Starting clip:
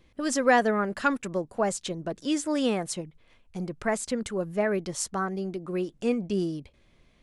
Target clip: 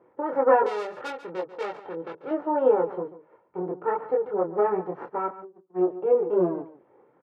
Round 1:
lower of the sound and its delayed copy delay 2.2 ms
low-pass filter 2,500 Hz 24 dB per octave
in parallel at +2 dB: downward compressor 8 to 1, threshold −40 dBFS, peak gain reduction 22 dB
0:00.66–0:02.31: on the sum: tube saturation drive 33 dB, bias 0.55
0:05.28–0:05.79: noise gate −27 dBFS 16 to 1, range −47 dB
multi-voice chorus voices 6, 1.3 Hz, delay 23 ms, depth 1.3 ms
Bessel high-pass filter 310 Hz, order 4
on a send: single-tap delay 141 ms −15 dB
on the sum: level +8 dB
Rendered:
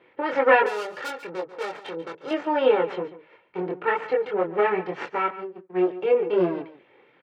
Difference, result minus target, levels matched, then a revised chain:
2,000 Hz band +10.0 dB; downward compressor: peak gain reduction −5.5 dB
lower of the sound and its delayed copy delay 2.2 ms
low-pass filter 1,200 Hz 24 dB per octave
in parallel at +2 dB: downward compressor 8 to 1, threshold −47 dBFS, peak gain reduction 27.5 dB
0:00.66–0:02.31: on the sum: tube saturation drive 33 dB, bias 0.55
0:05.28–0:05.79: noise gate −27 dBFS 16 to 1, range −47 dB
multi-voice chorus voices 6, 1.3 Hz, delay 23 ms, depth 1.3 ms
Bessel high-pass filter 310 Hz, order 4
on a send: single-tap delay 141 ms −15 dB
on the sum: level +8 dB

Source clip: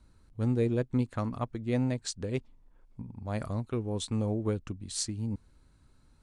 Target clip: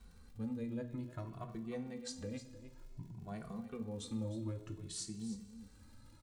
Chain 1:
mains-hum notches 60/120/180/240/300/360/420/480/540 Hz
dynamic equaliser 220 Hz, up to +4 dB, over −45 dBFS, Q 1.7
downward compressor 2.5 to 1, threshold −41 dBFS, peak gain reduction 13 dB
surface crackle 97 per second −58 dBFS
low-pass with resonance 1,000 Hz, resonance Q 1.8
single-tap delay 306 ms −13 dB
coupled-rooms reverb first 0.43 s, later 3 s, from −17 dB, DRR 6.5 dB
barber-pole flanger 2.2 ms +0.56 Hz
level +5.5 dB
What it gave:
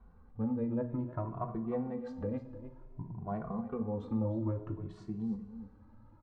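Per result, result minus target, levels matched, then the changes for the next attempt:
downward compressor: peak gain reduction −6.5 dB; 1,000 Hz band +4.0 dB
change: downward compressor 2.5 to 1, threshold −52 dBFS, peak gain reduction 19.5 dB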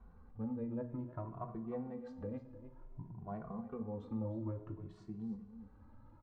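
1,000 Hz band +4.0 dB
remove: low-pass with resonance 1,000 Hz, resonance Q 1.8

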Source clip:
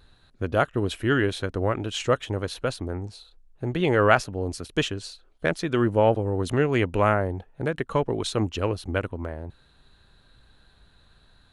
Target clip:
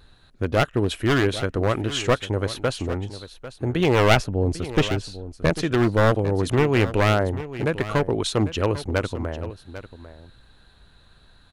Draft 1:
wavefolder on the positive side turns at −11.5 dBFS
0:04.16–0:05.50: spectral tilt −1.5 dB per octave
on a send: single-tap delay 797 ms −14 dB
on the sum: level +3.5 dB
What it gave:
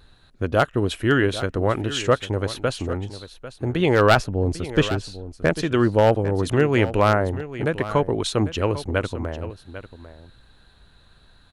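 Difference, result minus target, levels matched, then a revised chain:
wavefolder on the positive side: distortion −10 dB
wavefolder on the positive side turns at −18.5 dBFS
0:04.16–0:05.50: spectral tilt −1.5 dB per octave
on a send: single-tap delay 797 ms −14 dB
on the sum: level +3.5 dB

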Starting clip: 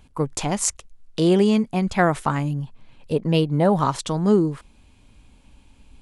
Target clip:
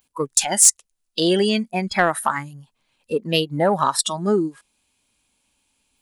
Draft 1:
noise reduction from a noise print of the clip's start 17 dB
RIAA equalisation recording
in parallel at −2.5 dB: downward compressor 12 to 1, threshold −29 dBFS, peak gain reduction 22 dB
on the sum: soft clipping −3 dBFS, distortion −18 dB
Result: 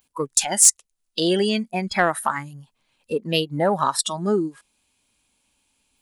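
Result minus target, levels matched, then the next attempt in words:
downward compressor: peak gain reduction +8.5 dB
noise reduction from a noise print of the clip's start 17 dB
RIAA equalisation recording
in parallel at −2.5 dB: downward compressor 12 to 1, threshold −20 dBFS, peak gain reduction 14 dB
on the sum: soft clipping −3 dBFS, distortion −17 dB

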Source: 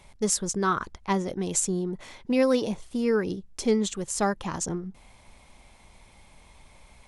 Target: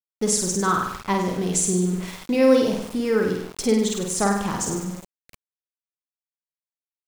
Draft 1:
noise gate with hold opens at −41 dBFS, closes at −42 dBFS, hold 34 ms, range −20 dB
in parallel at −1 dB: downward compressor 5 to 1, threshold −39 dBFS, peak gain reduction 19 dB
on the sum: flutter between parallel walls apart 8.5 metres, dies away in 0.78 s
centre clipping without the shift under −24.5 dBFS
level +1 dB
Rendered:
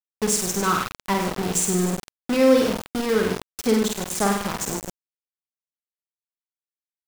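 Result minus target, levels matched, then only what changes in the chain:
centre clipping without the shift: distortion +14 dB
change: centre clipping without the shift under −36 dBFS

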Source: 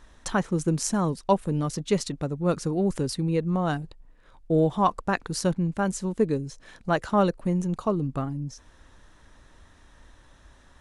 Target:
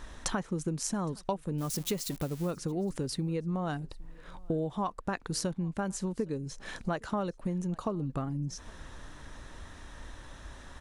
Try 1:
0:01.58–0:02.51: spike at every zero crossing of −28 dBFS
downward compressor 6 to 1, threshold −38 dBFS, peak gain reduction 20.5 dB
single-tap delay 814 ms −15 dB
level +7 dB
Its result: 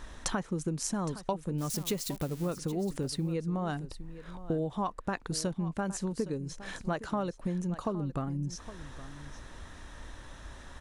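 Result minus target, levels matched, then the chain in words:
echo-to-direct +11.5 dB
0:01.58–0:02.51: spike at every zero crossing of −28 dBFS
downward compressor 6 to 1, threshold −38 dBFS, peak gain reduction 20.5 dB
single-tap delay 814 ms −26.5 dB
level +7 dB

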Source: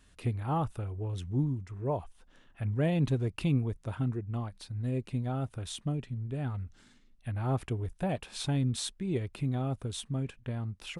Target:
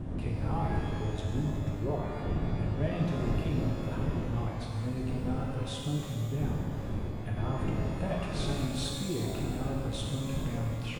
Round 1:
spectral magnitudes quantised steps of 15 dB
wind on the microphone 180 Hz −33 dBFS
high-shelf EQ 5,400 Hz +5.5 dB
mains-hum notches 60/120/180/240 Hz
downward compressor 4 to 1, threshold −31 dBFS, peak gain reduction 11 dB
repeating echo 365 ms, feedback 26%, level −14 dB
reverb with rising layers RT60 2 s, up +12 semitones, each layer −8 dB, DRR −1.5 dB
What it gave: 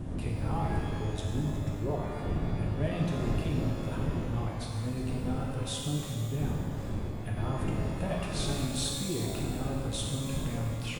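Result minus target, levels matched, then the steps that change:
8,000 Hz band +6.0 dB
change: high-shelf EQ 5,400 Hz −6.5 dB

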